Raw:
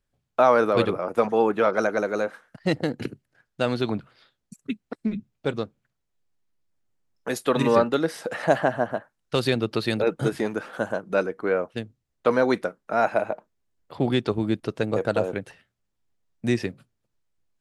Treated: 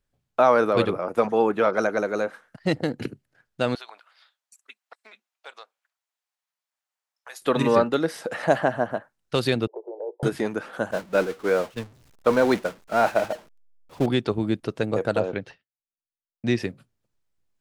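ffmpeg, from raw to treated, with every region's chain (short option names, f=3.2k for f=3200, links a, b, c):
-filter_complex "[0:a]asettb=1/sr,asplit=3[a][b][c];[a]atrim=end=3.754[d];[b]atrim=start=3.75:end=7.42,asetpts=PTS-STARTPTS,afade=t=in:d=0.004:c=qsin,afade=t=out:st=3.666:d=0.004:c=qsin,highpass=f=740:w=0.5412,highpass=f=740:w=1.3066,acompressor=threshold=-43dB:ratio=2:attack=3.2:release=140:knee=1:detection=peak[e];[c]atrim=start=7.416[f];[d][e]acrossfade=d=0.004:c1=hsin:c2=qsin[g];[g][f]acrossfade=d=0.004:c1=qsin:c2=hsin,asettb=1/sr,asplit=3[h][i][j];[h]atrim=end=9.674[k];[i]atrim=start=9.67:end=10.23,asetpts=PTS-STARTPTS,afade=t=in:d=0.004:c=qsin,afade=t=out:st=0.556:d=0.004:c=qsin,asuperpass=centerf=590:order=20:qfactor=0.94,acompressor=threshold=-36dB:ratio=2:attack=3.2:release=140:knee=1:detection=peak[l];[j]atrim=start=10.226[m];[k][l]acrossfade=d=0.004:c1=hsin:c2=qsin[n];[n][m]acrossfade=d=0.004:c1=qsin:c2=hsin,asettb=1/sr,asplit=3[o][p][q];[o]atrim=end=10.914[r];[p]atrim=start=10.91:end=14.06,asetpts=PTS-STARTPTS,afade=t=in:d=0.004:c=qsin,afade=t=out:st=3.146:d=0.004:c=qsin,aeval=exprs='val(0)+0.5*0.0447*sgn(val(0))':c=same,agate=range=-33dB:threshold=-22dB:ratio=3:release=100:detection=peak,highshelf=f=11k:g=-5.5[s];[q]atrim=start=14.056[t];[r][s]acrossfade=d=0.004:c1=hsin:c2=qsin[u];[u][t]acrossfade=d=0.004:c1=qsin:c2=hsin,asettb=1/sr,asplit=3[v][w][x];[v]atrim=end=15.204[y];[w]atrim=start=15.2:end=16.58,asetpts=PTS-STARTPTS,afade=t=in:d=0.004:c=qsin,afade=t=out:st=1.376:d=0.004:c=qsin,agate=range=-33dB:threshold=-47dB:ratio=3:release=100:detection=peak,highshelf=f=6.9k:t=q:w=1.5:g=-14[z];[x]atrim=start=16.576[aa];[y][z]acrossfade=d=0.004:c1=hsin:c2=qsin[ab];[ab][aa]acrossfade=d=0.004:c1=qsin:c2=hsin"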